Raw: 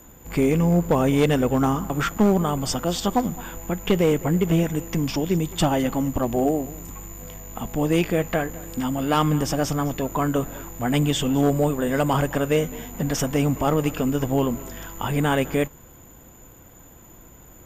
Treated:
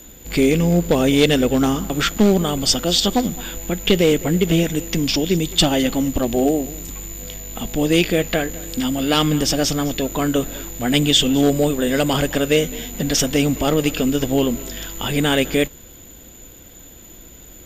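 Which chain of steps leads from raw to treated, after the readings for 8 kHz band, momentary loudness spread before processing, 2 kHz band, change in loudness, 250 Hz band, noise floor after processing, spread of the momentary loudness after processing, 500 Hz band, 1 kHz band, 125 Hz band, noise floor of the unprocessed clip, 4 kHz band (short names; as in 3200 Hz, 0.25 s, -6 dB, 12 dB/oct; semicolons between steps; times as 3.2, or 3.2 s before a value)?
+8.5 dB, 10 LU, +6.0 dB, +4.5 dB, +4.0 dB, -42 dBFS, 10 LU, +4.0 dB, -0.5 dB, +1.0 dB, -48 dBFS, +12.5 dB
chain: graphic EQ 125/1000/4000 Hz -7/-10/+10 dB; gain +6 dB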